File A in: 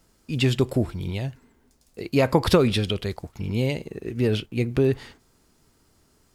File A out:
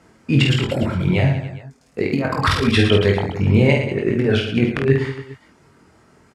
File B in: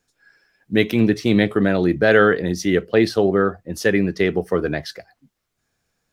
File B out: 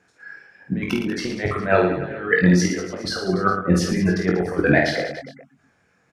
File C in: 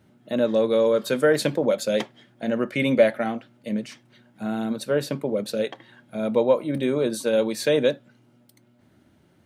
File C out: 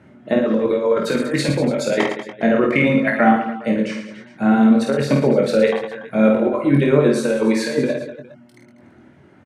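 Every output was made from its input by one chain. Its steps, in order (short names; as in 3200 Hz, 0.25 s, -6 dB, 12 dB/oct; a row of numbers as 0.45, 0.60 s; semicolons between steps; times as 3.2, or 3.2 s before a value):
HPF 95 Hz; reverb removal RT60 0.59 s; LPF 7800 Hz 12 dB/oct; reverb removal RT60 0.54 s; resonant high shelf 2800 Hz -7.5 dB, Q 1.5; negative-ratio compressor -25 dBFS, ratio -0.5; doubler 22 ms -5 dB; on a send: reverse bouncing-ball echo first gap 50 ms, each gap 1.25×, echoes 5; on the sum: normalise peaks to -2 dBFS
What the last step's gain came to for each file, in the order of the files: +8.0, +3.5, +7.0 dB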